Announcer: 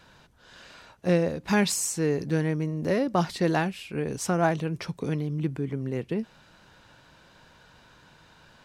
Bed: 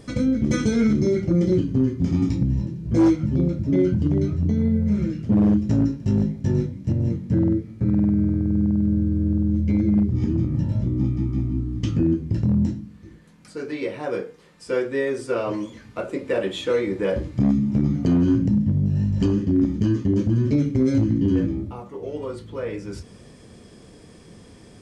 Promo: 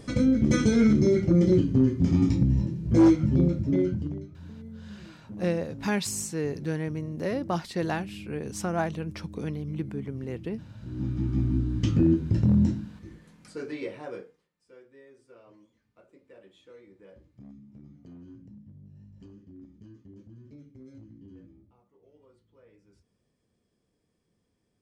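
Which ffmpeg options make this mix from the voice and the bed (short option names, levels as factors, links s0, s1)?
-filter_complex "[0:a]adelay=4350,volume=0.596[s0];[1:a]volume=10.6,afade=t=out:st=3.43:d=0.84:silence=0.0841395,afade=t=in:st=10.8:d=0.67:silence=0.0841395,afade=t=out:st=13.09:d=1.4:silence=0.0375837[s1];[s0][s1]amix=inputs=2:normalize=0"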